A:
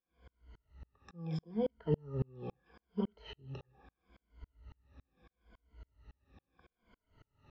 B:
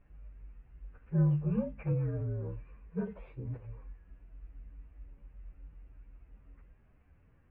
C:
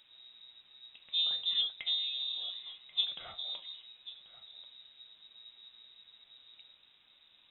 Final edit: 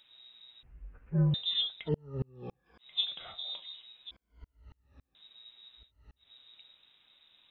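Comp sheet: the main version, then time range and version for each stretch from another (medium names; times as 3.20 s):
C
0.63–1.34 s: from B
1.84–2.83 s: from A, crossfade 0.10 s
4.11–5.15 s: from A
5.84–6.24 s: from A, crossfade 0.16 s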